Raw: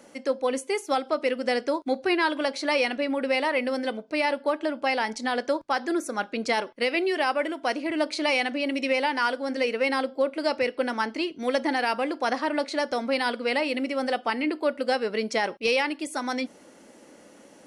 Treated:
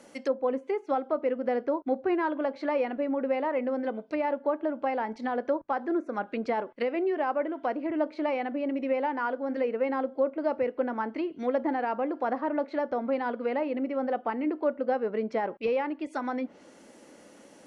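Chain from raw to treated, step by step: treble ducked by the level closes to 1100 Hz, closed at -24.5 dBFS; gain -1.5 dB

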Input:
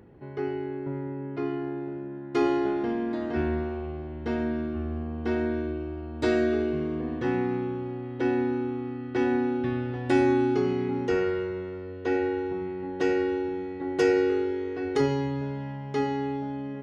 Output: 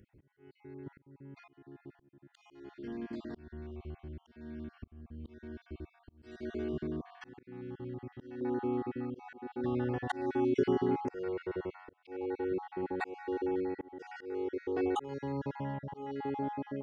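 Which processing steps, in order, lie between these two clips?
random spectral dropouts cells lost 37%; auto swell 0.555 s; bell 710 Hz -11.5 dB 2.4 oct, from 6.43 s -5 dB, from 8.41 s +6.5 dB; gain -4 dB

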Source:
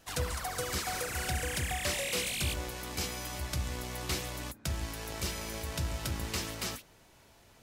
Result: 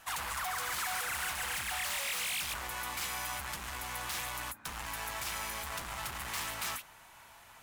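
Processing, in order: bell 5000 Hz -7 dB 1.1 oct; in parallel at -5 dB: sine folder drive 14 dB, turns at -22.5 dBFS; on the sum: resonant low shelf 650 Hz -12 dB, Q 1.5; gain -7 dB

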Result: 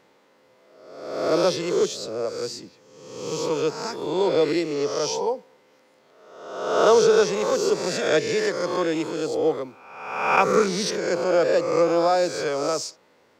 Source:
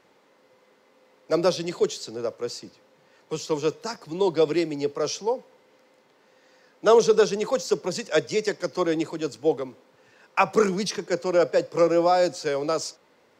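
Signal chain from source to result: spectral swells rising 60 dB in 1.06 s; gain -1.5 dB

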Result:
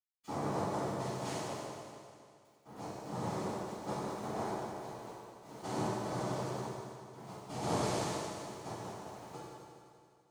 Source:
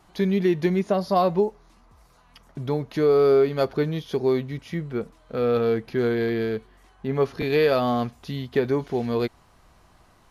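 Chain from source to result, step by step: noise vocoder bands 2; tremolo saw down 0.54 Hz, depth 85%; sample gate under -43 dBFS; reverb RT60 2.3 s, pre-delay 77 ms, DRR -60 dB; gain +10 dB

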